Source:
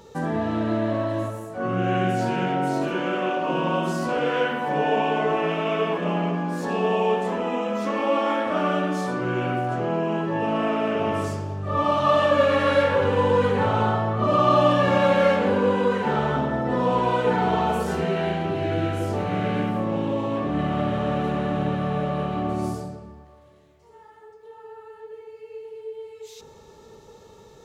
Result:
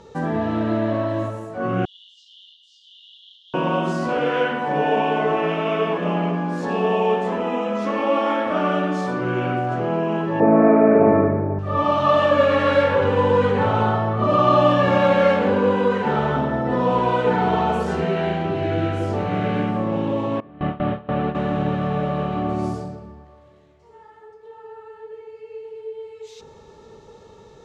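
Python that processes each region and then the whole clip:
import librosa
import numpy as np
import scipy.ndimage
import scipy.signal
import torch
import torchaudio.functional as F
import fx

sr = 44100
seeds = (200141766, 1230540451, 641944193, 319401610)

y = fx.chain(x, sr, fx.ring_mod(carrier_hz=650.0),
    fx.brickwall_highpass(low_hz=2800.0),
    fx.air_absorb(metres=150.0), at=(1.85, 3.54))
y = fx.chain(y, sr, fx.cheby_ripple(hz=2400.0, ripple_db=3),
    fx.peak_eq(hz=290.0, db=11.5, octaves=2.9), at=(10.4, 11.59))
y = fx.chain(y, sr, fx.lowpass(hz=3400.0, slope=12),
    fx.gate_hold(open_db=-14.0, close_db=-21.0, hold_ms=71.0, range_db=-21, attack_ms=1.4, release_ms=100.0), at=(20.4, 21.35))
y = scipy.signal.sosfilt(scipy.signal.butter(2, 8200.0, 'lowpass', fs=sr, output='sos'), y)
y = fx.high_shelf(y, sr, hz=5200.0, db=-6.5)
y = y * librosa.db_to_amplitude(2.5)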